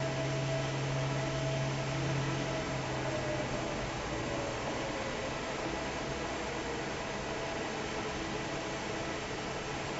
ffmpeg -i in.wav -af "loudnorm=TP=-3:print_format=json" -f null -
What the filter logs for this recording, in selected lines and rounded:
"input_i" : "-35.8",
"input_tp" : "-21.2",
"input_lra" : "2.7",
"input_thresh" : "-45.8",